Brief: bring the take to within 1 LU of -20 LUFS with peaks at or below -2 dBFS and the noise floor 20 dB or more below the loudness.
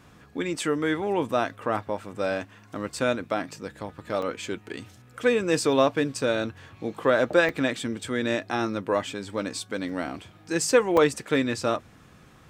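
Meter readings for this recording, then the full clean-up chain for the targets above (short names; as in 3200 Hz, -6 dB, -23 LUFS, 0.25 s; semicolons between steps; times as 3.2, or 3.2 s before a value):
dropouts 3; longest dropout 3.3 ms; loudness -26.5 LUFS; peak -7.0 dBFS; loudness target -20.0 LUFS
-> interpolate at 4.22/7.49/10.97, 3.3 ms; gain +6.5 dB; limiter -2 dBFS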